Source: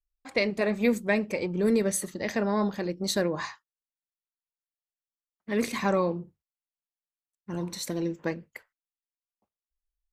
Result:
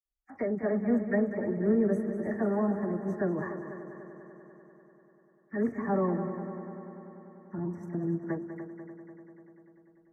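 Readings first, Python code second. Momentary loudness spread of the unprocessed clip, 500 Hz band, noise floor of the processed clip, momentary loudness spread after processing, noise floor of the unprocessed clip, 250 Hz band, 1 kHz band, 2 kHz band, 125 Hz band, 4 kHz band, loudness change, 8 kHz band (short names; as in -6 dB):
10 LU, -2.5 dB, -64 dBFS, 19 LU, under -85 dBFS, 0.0 dB, -4.0 dB, -8.5 dB, 0.0 dB, under -40 dB, -2.5 dB, under -30 dB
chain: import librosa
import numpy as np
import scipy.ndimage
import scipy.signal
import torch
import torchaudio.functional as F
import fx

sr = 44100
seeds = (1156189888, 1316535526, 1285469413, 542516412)

p1 = fx.spec_quant(x, sr, step_db=15)
p2 = scipy.signal.sosfilt(scipy.signal.ellip(3, 1.0, 40, [1800.0, 6100.0], 'bandstop', fs=sr, output='sos'), p1)
p3 = fx.air_absorb(p2, sr, metres=430.0)
p4 = fx.notch_comb(p3, sr, f0_hz=510.0)
p5 = fx.dispersion(p4, sr, late='lows', ms=50.0, hz=1800.0)
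y = p5 + fx.echo_heads(p5, sr, ms=98, heads='second and third', feedback_pct=66, wet_db=-11, dry=0)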